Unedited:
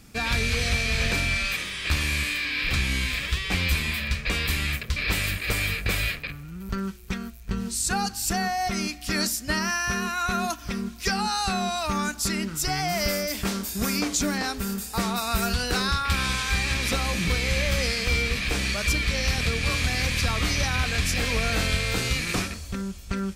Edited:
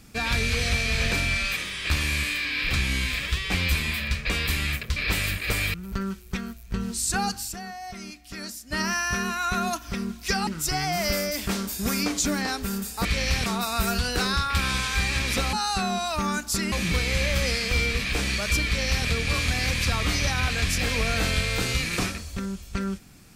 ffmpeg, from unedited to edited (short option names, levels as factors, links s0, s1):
-filter_complex "[0:a]asplit=9[s0][s1][s2][s3][s4][s5][s6][s7][s8];[s0]atrim=end=5.742[s9];[s1]atrim=start=6.508:end=8.3,asetpts=PTS-STARTPTS,afade=t=out:st=1.642:d=0.15:silence=0.281838[s10];[s2]atrim=start=8.3:end=9.43,asetpts=PTS-STARTPTS,volume=0.282[s11];[s3]atrim=start=9.43:end=11.242,asetpts=PTS-STARTPTS,afade=t=in:d=0.15:silence=0.281838[s12];[s4]atrim=start=12.428:end=15.012[s13];[s5]atrim=start=19.018:end=19.432[s14];[s6]atrim=start=15.008:end=17.082[s15];[s7]atrim=start=11.238:end=12.432[s16];[s8]atrim=start=17.078[s17];[s10][s11][s12]concat=n=3:v=0:a=1[s18];[s9][s18]acrossfade=d=0.004:c1=hsin:c2=hsin[s19];[s19][s13]acrossfade=d=0.004:c1=hsin:c2=hsin[s20];[s20][s14]acrossfade=d=0.004:c1=hsin:c2=hsin[s21];[s21][s15]acrossfade=d=0.004:c1=hsin:c2=hsin[s22];[s22][s16]acrossfade=d=0.004:c1=hsin:c2=hsin[s23];[s23][s17]acrossfade=d=0.004:c1=hsin:c2=hsin"